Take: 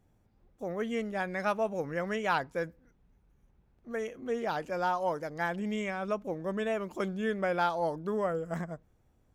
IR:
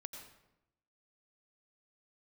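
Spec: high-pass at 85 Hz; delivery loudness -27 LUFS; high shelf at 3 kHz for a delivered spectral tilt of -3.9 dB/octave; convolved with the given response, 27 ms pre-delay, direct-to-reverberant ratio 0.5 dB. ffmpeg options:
-filter_complex "[0:a]highpass=85,highshelf=f=3000:g=4.5,asplit=2[s0][s1];[1:a]atrim=start_sample=2205,adelay=27[s2];[s1][s2]afir=irnorm=-1:irlink=0,volume=1.5[s3];[s0][s3]amix=inputs=2:normalize=0,volume=1.41"

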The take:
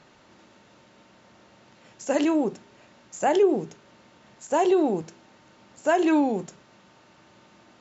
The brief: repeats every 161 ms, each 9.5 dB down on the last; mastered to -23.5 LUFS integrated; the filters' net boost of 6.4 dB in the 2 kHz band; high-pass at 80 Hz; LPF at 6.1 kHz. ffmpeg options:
-af "highpass=80,lowpass=6100,equalizer=f=2000:t=o:g=8.5,aecho=1:1:161|322|483|644:0.335|0.111|0.0365|0.012"

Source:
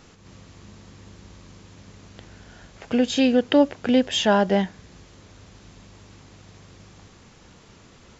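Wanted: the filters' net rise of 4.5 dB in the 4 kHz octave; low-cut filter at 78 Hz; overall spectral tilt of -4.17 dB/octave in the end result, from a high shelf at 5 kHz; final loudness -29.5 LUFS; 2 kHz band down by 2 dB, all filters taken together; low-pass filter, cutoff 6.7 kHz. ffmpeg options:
-af "highpass=78,lowpass=6700,equalizer=f=2000:t=o:g=-6,equalizer=f=4000:t=o:g=6.5,highshelf=f=5000:g=6,volume=0.355"

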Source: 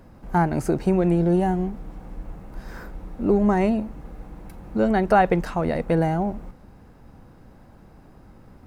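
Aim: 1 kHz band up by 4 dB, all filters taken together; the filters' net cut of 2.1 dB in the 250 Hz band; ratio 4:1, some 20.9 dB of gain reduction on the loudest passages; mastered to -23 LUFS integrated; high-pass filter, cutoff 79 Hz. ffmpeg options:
-af "highpass=79,equalizer=f=250:t=o:g=-3.5,equalizer=f=1000:t=o:g=6,acompressor=threshold=0.0158:ratio=4,volume=5.96"

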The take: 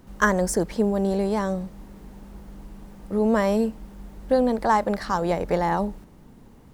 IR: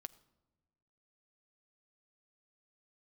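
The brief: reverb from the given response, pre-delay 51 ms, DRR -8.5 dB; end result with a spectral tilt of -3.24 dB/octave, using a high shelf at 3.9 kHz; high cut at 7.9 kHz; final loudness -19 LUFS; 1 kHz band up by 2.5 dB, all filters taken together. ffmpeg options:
-filter_complex "[0:a]lowpass=7900,equalizer=f=1000:t=o:g=3.5,highshelf=f=3900:g=-8,asplit=2[s0][s1];[1:a]atrim=start_sample=2205,adelay=51[s2];[s1][s2]afir=irnorm=-1:irlink=0,volume=5.01[s3];[s0][s3]amix=inputs=2:normalize=0,volume=0.531"

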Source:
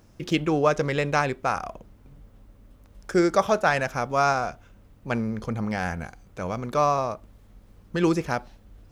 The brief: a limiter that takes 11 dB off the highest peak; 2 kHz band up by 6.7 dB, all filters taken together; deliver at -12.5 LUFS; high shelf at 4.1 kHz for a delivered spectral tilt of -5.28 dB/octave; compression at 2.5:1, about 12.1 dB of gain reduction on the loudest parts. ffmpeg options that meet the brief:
-af "equalizer=f=2000:t=o:g=7.5,highshelf=f=4100:g=7.5,acompressor=threshold=0.0224:ratio=2.5,volume=18.8,alimiter=limit=0.891:level=0:latency=1"

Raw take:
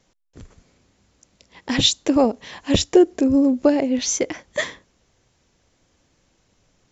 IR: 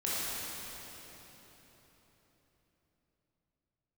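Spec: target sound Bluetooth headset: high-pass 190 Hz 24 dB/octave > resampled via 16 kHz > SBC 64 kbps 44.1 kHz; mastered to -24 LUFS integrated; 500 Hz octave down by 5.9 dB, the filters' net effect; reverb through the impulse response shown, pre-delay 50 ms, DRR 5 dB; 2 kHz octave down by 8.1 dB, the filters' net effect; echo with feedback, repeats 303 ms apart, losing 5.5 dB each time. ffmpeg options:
-filter_complex "[0:a]equalizer=f=500:t=o:g=-8,equalizer=f=2000:t=o:g=-9,aecho=1:1:303|606|909|1212|1515|1818|2121:0.531|0.281|0.149|0.079|0.0419|0.0222|0.0118,asplit=2[s0][s1];[1:a]atrim=start_sample=2205,adelay=50[s2];[s1][s2]afir=irnorm=-1:irlink=0,volume=0.224[s3];[s0][s3]amix=inputs=2:normalize=0,highpass=f=190:w=0.5412,highpass=f=190:w=1.3066,aresample=16000,aresample=44100,volume=0.668" -ar 44100 -c:a sbc -b:a 64k

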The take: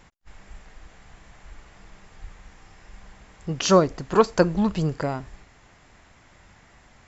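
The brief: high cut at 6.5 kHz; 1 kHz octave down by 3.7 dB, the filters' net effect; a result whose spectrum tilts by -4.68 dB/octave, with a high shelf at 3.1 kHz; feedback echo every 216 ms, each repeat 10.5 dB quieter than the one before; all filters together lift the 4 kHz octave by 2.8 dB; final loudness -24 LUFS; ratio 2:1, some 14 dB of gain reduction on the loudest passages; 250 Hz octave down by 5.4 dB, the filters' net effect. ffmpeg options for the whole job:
-af "lowpass=6500,equalizer=f=250:t=o:g=-8.5,equalizer=f=1000:t=o:g=-4,highshelf=f=3100:g=-4,equalizer=f=4000:t=o:g=8,acompressor=threshold=0.00891:ratio=2,aecho=1:1:216|432|648:0.299|0.0896|0.0269,volume=6.31"

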